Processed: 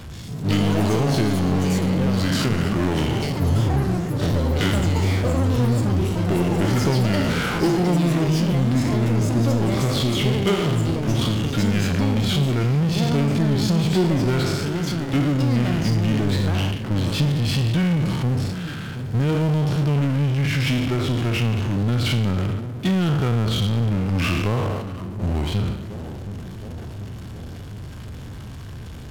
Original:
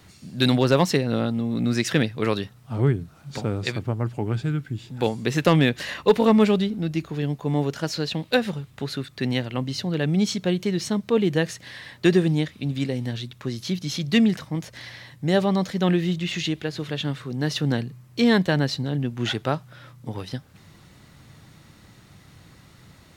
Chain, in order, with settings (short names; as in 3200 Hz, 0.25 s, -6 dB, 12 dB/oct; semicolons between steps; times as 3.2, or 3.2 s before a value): spectral trails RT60 0.72 s; gate -34 dBFS, range -10 dB; low shelf 370 Hz +10.5 dB; compressor, threshold -16 dBFS, peak gain reduction 10.5 dB; analogue delay 0.573 s, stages 4096, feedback 54%, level -21 dB; power-law curve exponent 0.5; wide varispeed 0.796×; echoes that change speed 0.15 s, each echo +7 st, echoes 3, each echo -6 dB; gain -6.5 dB